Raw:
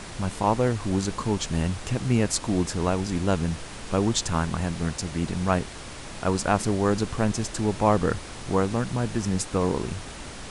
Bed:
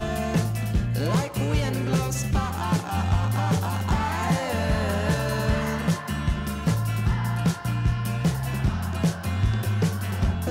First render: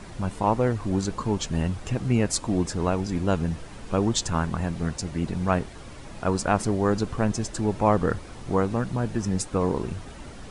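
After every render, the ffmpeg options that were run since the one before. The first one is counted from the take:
-af "afftdn=nr=9:nf=-39"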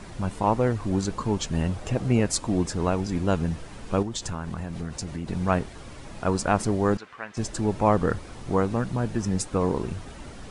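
-filter_complex "[0:a]asettb=1/sr,asplit=3[s0][s1][s2];[s0]atrim=end=1.674[s3];[s1]atrim=start=1.67:end=2.2,asetpts=PTS-STARTPTS,afade=t=in:d=0.004:c=qsin,afade=t=out:st=0.526:d=0.004:c=qsin,equalizer=f=590:w=1.5:g=6.5[s4];[s2]atrim=start=2.196[s5];[s3][s4]acrossfade=d=0.004:c1=hsin:c2=qsin[s6];[s6][s5]acrossfade=d=0.004:c1=qsin:c2=hsin,asettb=1/sr,asplit=3[s7][s8][s9];[s7]atrim=end=4.024[s10];[s8]atrim=start=4.02:end=5.28,asetpts=PTS-STARTPTS,afade=t=in:d=0.004:c=qsin,afade=t=out:st=1.256:d=0.004:c=qsin,acompressor=threshold=0.0447:ratio=6:attack=3.2:release=140:knee=1:detection=peak[s11];[s9]atrim=start=5.276[s12];[s10][s11]acrossfade=d=0.004:c1=hsin:c2=qsin[s13];[s13][s12]acrossfade=d=0.004:c1=qsin:c2=hsin,asettb=1/sr,asplit=3[s14][s15][s16];[s14]atrim=end=6.974[s17];[s15]atrim=start=6.97:end=7.37,asetpts=PTS-STARTPTS,afade=t=in:d=0.004:c=qsin,afade=t=out:st=0.396:d=0.004:c=qsin,bandpass=f=1900:t=q:w=1.5[s18];[s16]atrim=start=7.366[s19];[s17][s18]acrossfade=d=0.004:c1=hsin:c2=qsin[s20];[s20][s19]acrossfade=d=0.004:c1=qsin:c2=hsin"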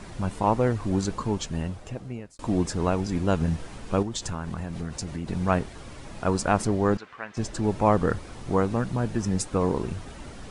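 -filter_complex "[0:a]asettb=1/sr,asplit=3[s0][s1][s2];[s0]atrim=end=3.384[s3];[s1]atrim=start=3.38:end=3.78,asetpts=PTS-STARTPTS,afade=t=in:d=0.004:c=qsin,afade=t=out:st=0.396:d=0.004:c=qsin,asplit=2[s4][s5];[s5]adelay=25,volume=0.501[s6];[s4][s6]amix=inputs=2:normalize=0,atrim=end_sample=17640[s7];[s2]atrim=start=3.776[s8];[s3][s7]acrossfade=d=0.004:c1=hsin:c2=qsin[s9];[s9][s8]acrossfade=d=0.004:c1=qsin:c2=hsin,asettb=1/sr,asplit=3[s10][s11][s12];[s10]atrim=end=6.674[s13];[s11]atrim=start=6.67:end=7.64,asetpts=PTS-STARTPTS,afade=t=in:d=0.004:c=qsin,afade=t=out:st=0.966:d=0.004:c=qsin,highshelf=f=9900:g=-11[s14];[s12]atrim=start=7.636[s15];[s13][s14]acrossfade=d=0.004:c1=hsin:c2=qsin[s16];[s16][s15]acrossfade=d=0.004:c1=qsin:c2=hsin,asplit=2[s17][s18];[s17]atrim=end=2.39,asetpts=PTS-STARTPTS,afade=t=out:st=1.11:d=1.28[s19];[s18]atrim=start=2.39,asetpts=PTS-STARTPTS,afade=t=in:d=0.004:c=hsin[s20];[s19][s20]concat=n=2:v=0:a=1"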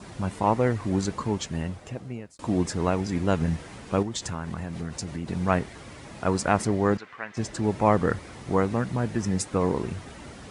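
-af "highpass=69,adynamicequalizer=threshold=0.00282:dfrequency=2000:dqfactor=4.1:tfrequency=2000:tqfactor=4.1:attack=5:release=100:ratio=0.375:range=3:mode=boostabove:tftype=bell"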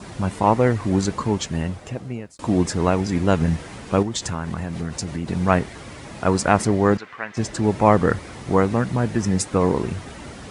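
-af "volume=1.88"

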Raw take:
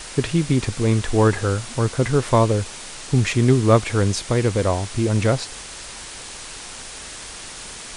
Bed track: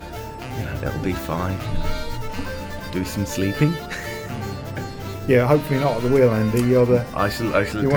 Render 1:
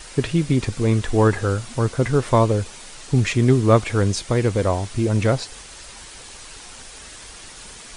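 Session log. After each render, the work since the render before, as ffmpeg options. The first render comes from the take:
-af "afftdn=nr=6:nf=-36"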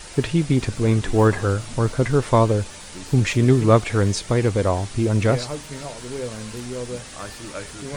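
-filter_complex "[1:a]volume=0.188[s0];[0:a][s0]amix=inputs=2:normalize=0"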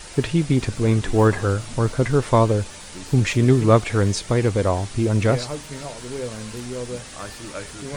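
-af anull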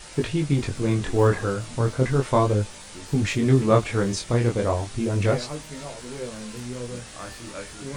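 -af "flanger=delay=19:depth=6.8:speed=0.35"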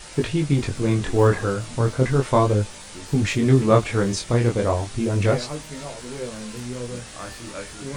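-af "volume=1.26"

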